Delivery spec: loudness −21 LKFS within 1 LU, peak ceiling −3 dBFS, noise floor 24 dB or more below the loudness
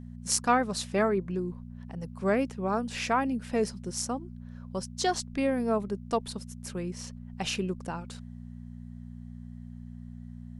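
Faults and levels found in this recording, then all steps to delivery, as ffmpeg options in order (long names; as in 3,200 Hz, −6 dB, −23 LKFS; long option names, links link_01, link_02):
mains hum 60 Hz; hum harmonics up to 240 Hz; level of the hum −40 dBFS; integrated loudness −30.5 LKFS; sample peak −9.0 dBFS; target loudness −21.0 LKFS
→ -af "bandreject=frequency=60:width_type=h:width=4,bandreject=frequency=120:width_type=h:width=4,bandreject=frequency=180:width_type=h:width=4,bandreject=frequency=240:width_type=h:width=4"
-af "volume=9.5dB,alimiter=limit=-3dB:level=0:latency=1"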